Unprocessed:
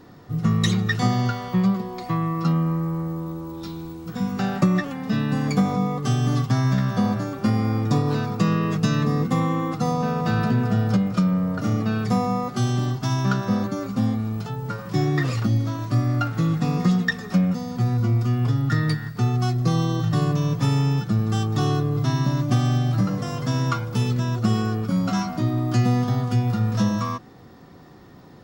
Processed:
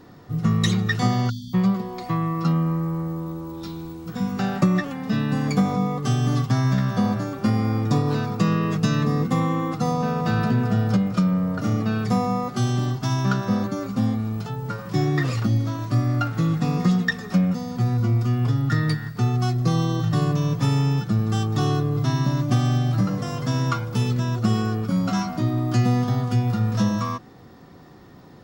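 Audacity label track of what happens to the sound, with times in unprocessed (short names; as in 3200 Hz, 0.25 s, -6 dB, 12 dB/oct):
1.300000	1.540000	spectral delete 330–3000 Hz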